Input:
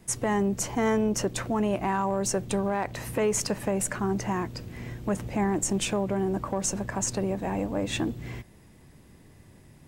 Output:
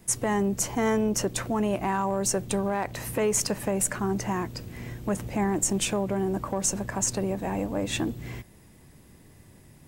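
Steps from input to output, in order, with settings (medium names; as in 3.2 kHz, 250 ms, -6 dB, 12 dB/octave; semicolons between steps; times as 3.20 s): treble shelf 8.7 kHz +8 dB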